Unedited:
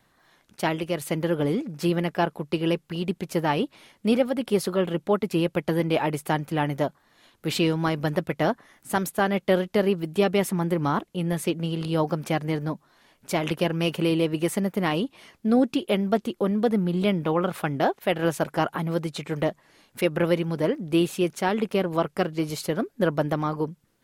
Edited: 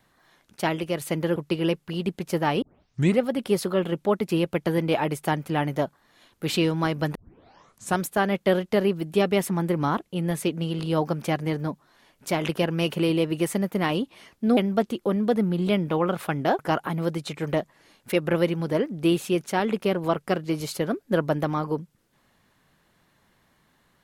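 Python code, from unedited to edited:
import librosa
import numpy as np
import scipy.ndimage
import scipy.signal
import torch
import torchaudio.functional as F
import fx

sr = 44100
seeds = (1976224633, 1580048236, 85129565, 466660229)

y = fx.edit(x, sr, fx.cut(start_s=1.36, length_s=1.02),
    fx.tape_start(start_s=3.64, length_s=0.59),
    fx.tape_start(start_s=8.17, length_s=0.85),
    fx.cut(start_s=15.59, length_s=0.33),
    fx.cut(start_s=17.94, length_s=0.54), tone=tone)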